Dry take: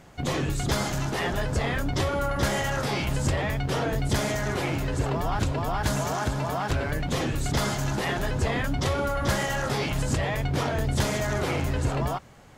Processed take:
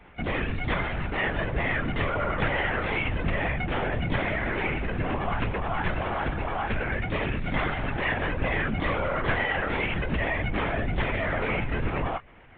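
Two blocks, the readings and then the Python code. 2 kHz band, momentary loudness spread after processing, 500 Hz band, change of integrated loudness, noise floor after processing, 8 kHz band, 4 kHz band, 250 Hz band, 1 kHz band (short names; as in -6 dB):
+4.0 dB, 3 LU, -1.5 dB, -1.0 dB, -32 dBFS, under -40 dB, -4.5 dB, -2.0 dB, -0.5 dB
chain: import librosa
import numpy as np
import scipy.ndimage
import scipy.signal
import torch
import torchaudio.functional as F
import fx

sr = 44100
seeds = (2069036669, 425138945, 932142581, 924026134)

p1 = fx.quant_companded(x, sr, bits=4)
p2 = x + (p1 * 10.0 ** (-4.5 / 20.0))
p3 = fx.lowpass_res(p2, sr, hz=2300.0, q=2.4)
p4 = fx.lpc_vocoder(p3, sr, seeds[0], excitation='whisper', order=16)
y = p4 * 10.0 ** (-6.0 / 20.0)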